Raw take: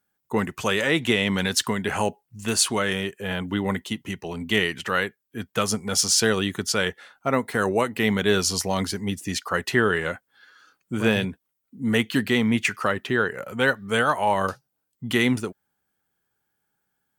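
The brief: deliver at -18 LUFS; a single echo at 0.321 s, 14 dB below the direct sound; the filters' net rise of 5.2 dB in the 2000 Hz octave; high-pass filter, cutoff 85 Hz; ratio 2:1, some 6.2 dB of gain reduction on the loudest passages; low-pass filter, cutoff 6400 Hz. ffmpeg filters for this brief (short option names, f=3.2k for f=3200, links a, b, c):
-af "highpass=85,lowpass=6.4k,equalizer=f=2k:t=o:g=6.5,acompressor=threshold=-24dB:ratio=2,aecho=1:1:321:0.2,volume=8dB"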